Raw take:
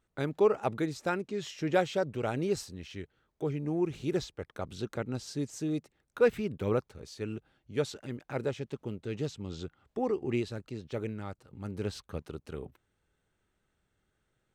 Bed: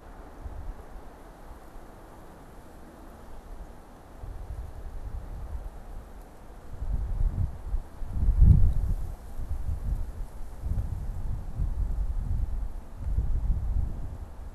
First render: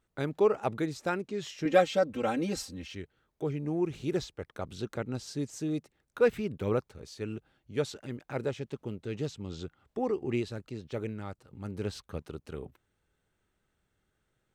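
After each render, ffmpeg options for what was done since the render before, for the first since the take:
ffmpeg -i in.wav -filter_complex "[0:a]asettb=1/sr,asplit=3[link_01][link_02][link_03];[link_01]atrim=end=1.654[link_04];[link_02]atrim=start=1.65:end=2.95,asetpts=PTS-STARTPTS,afade=type=in:duration=0.004:curve=qsin,afade=type=out:start_time=1.296:duration=0.004:curve=qsin,aecho=1:1:3.8:0.97,atrim=end_sample=57330[link_05];[link_03]atrim=start=2.946[link_06];[link_04][link_05]acrossfade=duration=0.004:curve1=hsin:curve2=qsin[link_07];[link_07][link_06]acrossfade=duration=0.004:curve1=qsin:curve2=hsin" out.wav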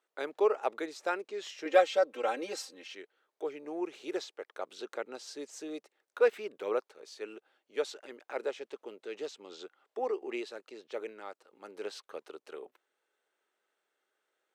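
ffmpeg -i in.wav -af "highpass=frequency=400:width=0.5412,highpass=frequency=400:width=1.3066,highshelf=frequency=8200:gain=-7" out.wav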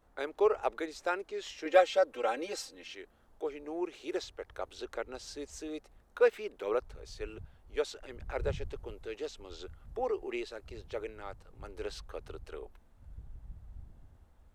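ffmpeg -i in.wav -i bed.wav -filter_complex "[1:a]volume=-20.5dB[link_01];[0:a][link_01]amix=inputs=2:normalize=0" out.wav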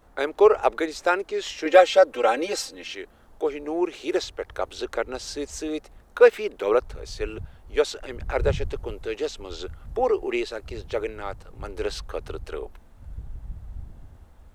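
ffmpeg -i in.wav -af "volume=11dB,alimiter=limit=-3dB:level=0:latency=1" out.wav

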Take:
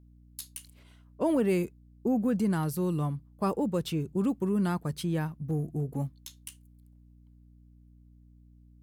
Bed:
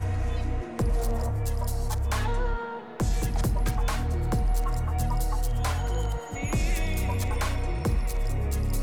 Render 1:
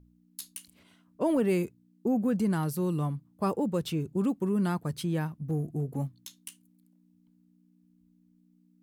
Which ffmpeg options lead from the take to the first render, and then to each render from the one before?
ffmpeg -i in.wav -af "bandreject=frequency=60:width_type=h:width=4,bandreject=frequency=120:width_type=h:width=4" out.wav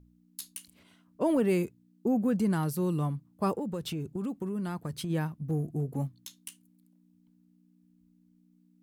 ffmpeg -i in.wav -filter_complex "[0:a]asplit=3[link_01][link_02][link_03];[link_01]afade=type=out:start_time=3.54:duration=0.02[link_04];[link_02]acompressor=threshold=-30dB:ratio=6:attack=3.2:release=140:knee=1:detection=peak,afade=type=in:start_time=3.54:duration=0.02,afade=type=out:start_time=5.09:duration=0.02[link_05];[link_03]afade=type=in:start_time=5.09:duration=0.02[link_06];[link_04][link_05][link_06]amix=inputs=3:normalize=0" out.wav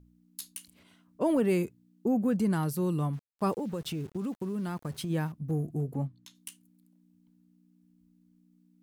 ffmpeg -i in.wav -filter_complex "[0:a]asettb=1/sr,asplit=3[link_01][link_02][link_03];[link_01]atrim=end=3.134[link_04];[link_02]atrim=start=3.13:end=5.32,asetpts=PTS-STARTPTS,afade=type=in:duration=0.004:curve=qsin,afade=type=out:start_time=2.186:duration=0.004:curve=qsin,aeval=exprs='val(0)*gte(abs(val(0)),0.00355)':channel_layout=same[link_05];[link_03]atrim=start=5.316[link_06];[link_04][link_05]acrossfade=duration=0.004:curve1=hsin:curve2=qsin[link_07];[link_07][link_06]acrossfade=duration=0.004:curve1=qsin:curve2=hsin,asplit=3[link_08][link_09][link_10];[link_08]afade=type=out:start_time=5.94:duration=0.02[link_11];[link_09]lowpass=frequency=2400:poles=1,afade=type=in:start_time=5.94:duration=0.02,afade=type=out:start_time=6.34:duration=0.02[link_12];[link_10]afade=type=in:start_time=6.34:duration=0.02[link_13];[link_11][link_12][link_13]amix=inputs=3:normalize=0" out.wav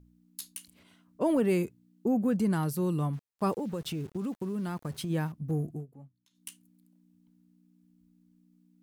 ffmpeg -i in.wav -filter_complex "[0:a]asplit=3[link_01][link_02][link_03];[link_01]atrim=end=5.86,asetpts=PTS-STARTPTS,afade=type=out:start_time=5.68:duration=0.18:silence=0.11885[link_04];[link_02]atrim=start=5.86:end=6.3,asetpts=PTS-STARTPTS,volume=-18.5dB[link_05];[link_03]atrim=start=6.3,asetpts=PTS-STARTPTS,afade=type=in:duration=0.18:silence=0.11885[link_06];[link_04][link_05][link_06]concat=n=3:v=0:a=1" out.wav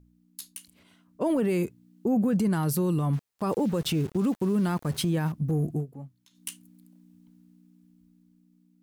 ffmpeg -i in.wav -af "dynaudnorm=framelen=400:gausssize=9:maxgain=9dB,alimiter=limit=-18.5dB:level=0:latency=1:release=16" out.wav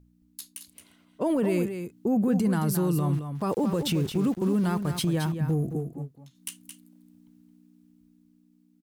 ffmpeg -i in.wav -af "aecho=1:1:220:0.376" out.wav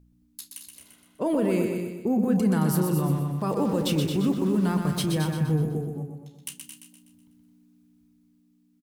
ffmpeg -i in.wav -filter_complex "[0:a]asplit=2[link_01][link_02];[link_02]adelay=32,volume=-13dB[link_03];[link_01][link_03]amix=inputs=2:normalize=0,aecho=1:1:124|248|372|496|620|744:0.501|0.231|0.106|0.0488|0.0224|0.0103" out.wav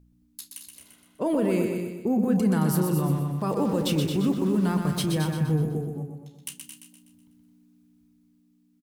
ffmpeg -i in.wav -af anull out.wav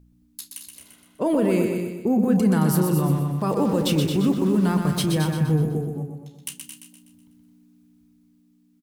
ffmpeg -i in.wav -af "volume=3.5dB" out.wav

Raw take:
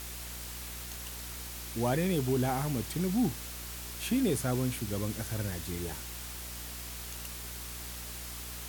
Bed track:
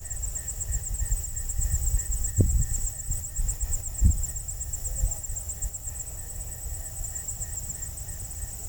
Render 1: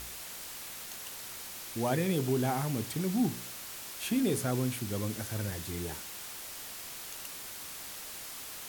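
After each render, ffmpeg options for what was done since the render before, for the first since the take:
ffmpeg -i in.wav -af "bandreject=frequency=60:width_type=h:width=4,bandreject=frequency=120:width_type=h:width=4,bandreject=frequency=180:width_type=h:width=4,bandreject=frequency=240:width_type=h:width=4,bandreject=frequency=300:width_type=h:width=4,bandreject=frequency=360:width_type=h:width=4,bandreject=frequency=420:width_type=h:width=4,bandreject=frequency=480:width_type=h:width=4,bandreject=frequency=540:width_type=h:width=4" out.wav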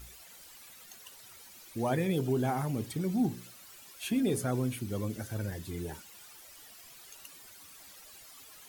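ffmpeg -i in.wav -af "afftdn=noise_reduction=13:noise_floor=-44" out.wav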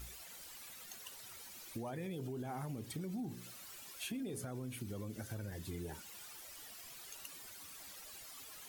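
ffmpeg -i in.wav -af "alimiter=level_in=2.5dB:limit=-24dB:level=0:latency=1:release=64,volume=-2.5dB,acompressor=threshold=-42dB:ratio=3" out.wav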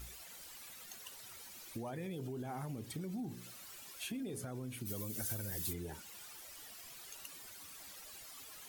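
ffmpeg -i in.wav -filter_complex "[0:a]asplit=3[link_01][link_02][link_03];[link_01]afade=type=out:start_time=4.85:duration=0.02[link_04];[link_02]aemphasis=mode=production:type=75kf,afade=type=in:start_time=4.85:duration=0.02,afade=type=out:start_time=5.72:duration=0.02[link_05];[link_03]afade=type=in:start_time=5.72:duration=0.02[link_06];[link_04][link_05][link_06]amix=inputs=3:normalize=0" out.wav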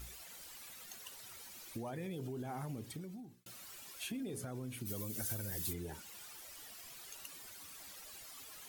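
ffmpeg -i in.wav -filter_complex "[0:a]asplit=2[link_01][link_02];[link_01]atrim=end=3.46,asetpts=PTS-STARTPTS,afade=type=out:start_time=2.77:duration=0.69[link_03];[link_02]atrim=start=3.46,asetpts=PTS-STARTPTS,afade=type=in:duration=0.004:curve=hsin[link_04];[link_03][link_04]concat=n=2:v=0:a=1" out.wav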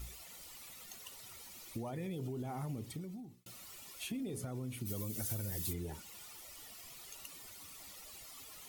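ffmpeg -i in.wav -af "lowshelf=frequency=170:gain=5,bandreject=frequency=1600:width=6.8" out.wav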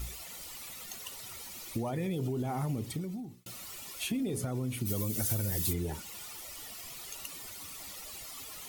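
ffmpeg -i in.wav -af "volume=7.5dB" out.wav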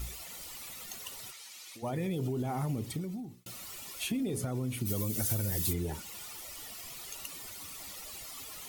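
ffmpeg -i in.wav -filter_complex "[0:a]asplit=3[link_01][link_02][link_03];[link_01]afade=type=out:start_time=1.3:duration=0.02[link_04];[link_02]bandpass=frequency=3800:width_type=q:width=0.52,afade=type=in:start_time=1.3:duration=0.02,afade=type=out:start_time=1.82:duration=0.02[link_05];[link_03]afade=type=in:start_time=1.82:duration=0.02[link_06];[link_04][link_05][link_06]amix=inputs=3:normalize=0" out.wav

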